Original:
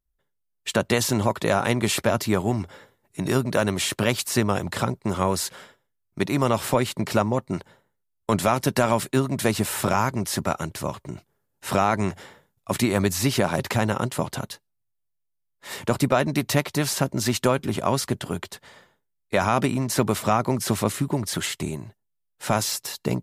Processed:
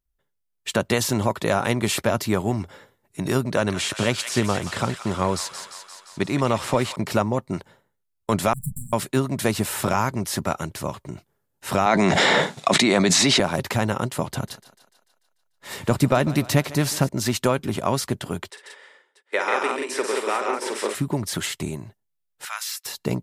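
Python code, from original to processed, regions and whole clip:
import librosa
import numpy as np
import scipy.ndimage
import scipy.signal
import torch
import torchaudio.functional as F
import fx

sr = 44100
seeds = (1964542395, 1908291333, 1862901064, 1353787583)

y = fx.chain(x, sr, fx.lowpass(hz=8700.0, slope=12),
    fx.echo_wet_highpass(ms=174, feedback_pct=68, hz=1400.0, wet_db=-7.5), at=(3.5, 6.96))
y = fx.chain(y, sr, fx.lower_of_two(delay_ms=7.0),
    fx.brickwall_bandstop(low_hz=230.0, high_hz=7300.0), at=(8.53, 8.93))
y = fx.chain(y, sr, fx.cabinet(low_hz=160.0, low_slope=24, high_hz=8200.0, hz=(680.0, 2100.0, 3800.0), db=(5, 5, 7)),
    fx.env_flatten(amount_pct=100), at=(11.86, 13.4))
y = fx.chain(y, sr, fx.low_shelf(hz=210.0, db=6.0),
    fx.echo_thinned(ms=147, feedback_pct=59, hz=290.0, wet_db=-16.5), at=(14.29, 17.09))
y = fx.chain(y, sr, fx.cabinet(low_hz=390.0, low_slope=24, high_hz=8900.0, hz=(410.0, 690.0, 1100.0, 1900.0, 4300.0, 6600.0), db=(3, -10, -4, 4, -6, -8)),
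    fx.echo_multitap(ms=(50, 139, 179, 636), db=(-8.5, -5.0, -4.0, -16.0)), at=(18.5, 20.95))
y = fx.chain(y, sr, fx.highpass(hz=1300.0, slope=24),
    fx.peak_eq(hz=7100.0, db=-5.0, octaves=1.6), at=(22.45, 22.86))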